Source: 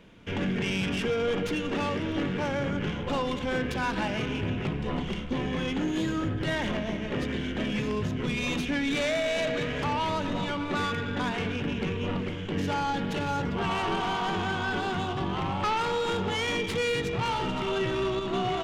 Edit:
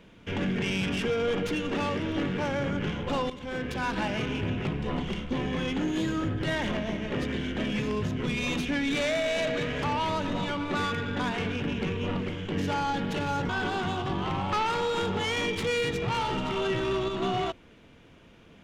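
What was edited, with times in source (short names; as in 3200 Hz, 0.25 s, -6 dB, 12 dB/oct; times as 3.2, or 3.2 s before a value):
3.3–4.15 fade in equal-power, from -12.5 dB
13.49–14.6 cut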